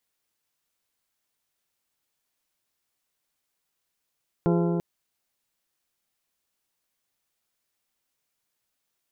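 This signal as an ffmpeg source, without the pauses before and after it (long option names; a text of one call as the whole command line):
ffmpeg -f lavfi -i "aevalsrc='0.0944*pow(10,-3*t/3.71)*sin(2*PI*171*t)+0.0668*pow(10,-3*t/3.013)*sin(2*PI*342*t)+0.0473*pow(10,-3*t/2.853)*sin(2*PI*410.4*t)+0.0335*pow(10,-3*t/2.668)*sin(2*PI*513*t)+0.0237*pow(10,-3*t/2.448)*sin(2*PI*684*t)+0.0168*pow(10,-3*t/2.289)*sin(2*PI*855*t)+0.0119*pow(10,-3*t/2.167)*sin(2*PI*1026*t)+0.00841*pow(10,-3*t/1.988)*sin(2*PI*1368*t)':duration=0.34:sample_rate=44100" out.wav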